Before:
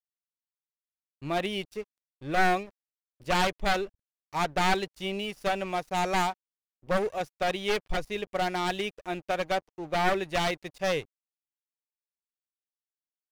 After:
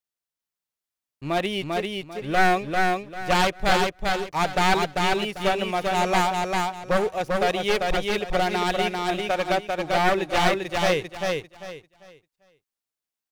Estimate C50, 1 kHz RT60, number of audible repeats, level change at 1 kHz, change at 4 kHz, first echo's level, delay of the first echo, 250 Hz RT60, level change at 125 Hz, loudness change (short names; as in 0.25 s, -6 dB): none, none, 3, +6.5 dB, +6.5 dB, -3.0 dB, 0.395 s, none, +6.5 dB, +5.5 dB